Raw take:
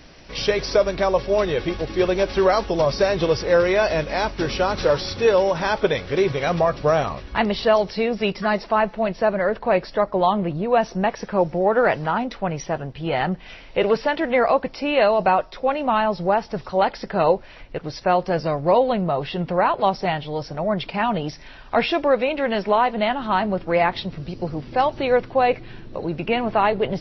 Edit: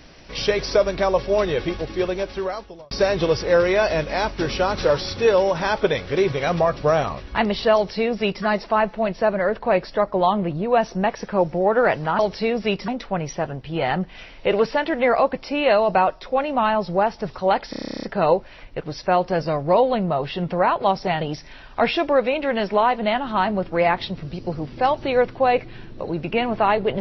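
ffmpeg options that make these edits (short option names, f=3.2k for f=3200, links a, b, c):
-filter_complex "[0:a]asplit=16[a][b][c][d][e][f][g][h][i][j][k][l][m][n][o][p];[a]atrim=end=2.91,asetpts=PTS-STARTPTS,afade=t=out:st=1.63:d=1.28[q];[b]atrim=start=2.91:end=12.192,asetpts=PTS-STARTPTS,afade=t=in:d=0.004:c=hsin[r];[c]atrim=start=7.748:end=8.442[s];[d]atrim=start=12.188:end=17.042[t];[e]atrim=start=17.008:end=17.042[u];[f]atrim=start=17.008:end=17.042[v];[g]atrim=start=17.008:end=17.042[w];[h]atrim=start=17.008:end=17.042[x];[i]atrim=start=17.008:end=17.042[y];[j]atrim=start=17.008:end=17.042[z];[k]atrim=start=17.008:end=17.042[aa];[l]atrim=start=17.008:end=17.042[ab];[m]atrim=start=17.008:end=17.042[ac];[n]atrim=start=17.008:end=17.042[ad];[o]atrim=start=17.008:end=20.192[ae];[p]atrim=start=21.158[af];[q][r]concat=n=2:v=0:a=1[ag];[ag][s]acrossfade=d=0.004:c1=hsin:c2=hsin[ah];[ah][t]acrossfade=d=0.004:c1=hsin:c2=hsin[ai];[ai][u]acrossfade=d=0.004:c1=hsin:c2=hsin[aj];[aj][v]acrossfade=d=0.004:c1=hsin:c2=hsin[ak];[ak][w]acrossfade=d=0.004:c1=hsin:c2=hsin[al];[al][x]acrossfade=d=0.004:c1=hsin:c2=hsin[am];[am][y]acrossfade=d=0.004:c1=hsin:c2=hsin[an];[an][z]acrossfade=d=0.004:c1=hsin:c2=hsin[ao];[ao][aa]acrossfade=d=0.004:c1=hsin:c2=hsin[ap];[ap][ab]acrossfade=d=0.004:c1=hsin:c2=hsin[aq];[aq][ac]acrossfade=d=0.004:c1=hsin:c2=hsin[ar];[ar][ad]acrossfade=d=0.004:c1=hsin:c2=hsin[as];[as][ae]acrossfade=d=0.004:c1=hsin:c2=hsin[at];[at][af]acrossfade=d=0.004:c1=hsin:c2=hsin"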